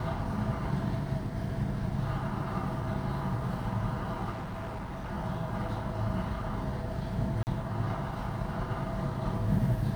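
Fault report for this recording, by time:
4.31–5.12 clipped -34 dBFS
7.43–7.47 gap 39 ms

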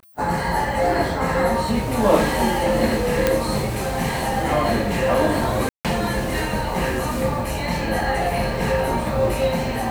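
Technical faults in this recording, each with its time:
3.27 pop -3 dBFS
5.69–5.85 gap 0.157 s

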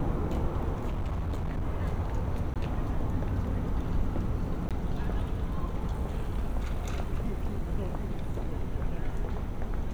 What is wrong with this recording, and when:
0.89–1.64 clipped -27.5 dBFS
2.54–2.56 gap 17 ms
4.69–4.71 gap 17 ms

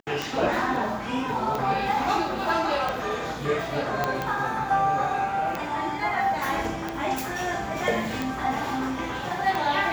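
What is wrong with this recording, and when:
tick 45 rpm
4.04 pop -10 dBFS

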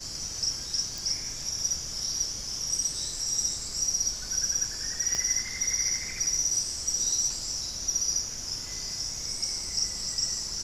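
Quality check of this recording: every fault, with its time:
0.98 pop
5.15 pop -17 dBFS

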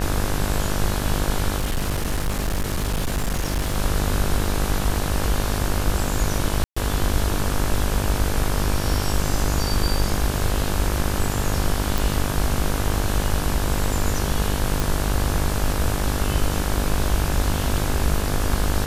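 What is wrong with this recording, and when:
buzz 50 Hz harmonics 35 -26 dBFS
1.58–3.76 clipped -19 dBFS
6.64–6.76 gap 0.125 s
11.98 pop
14.8 pop

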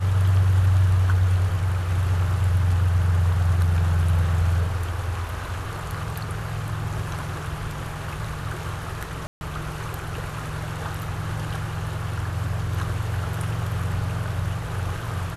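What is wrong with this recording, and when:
9.27–9.41 gap 0.141 s

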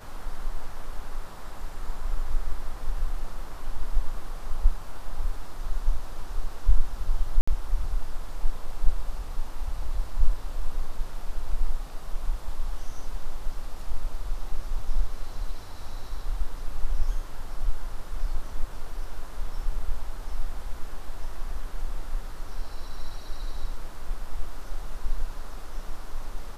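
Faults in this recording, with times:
7.41–7.47 gap 65 ms

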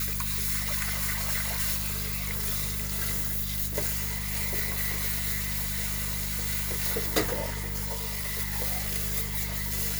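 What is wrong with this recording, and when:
hum 50 Hz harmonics 4 -35 dBFS
7.91–8.4 clipped -28.5 dBFS

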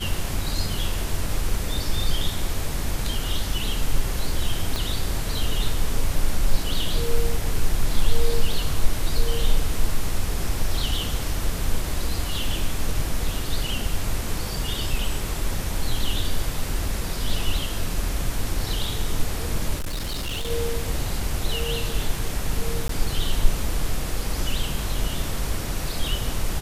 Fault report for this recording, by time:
4.76 pop
19.77–20.51 clipped -24 dBFS
22.88–22.89 gap 13 ms

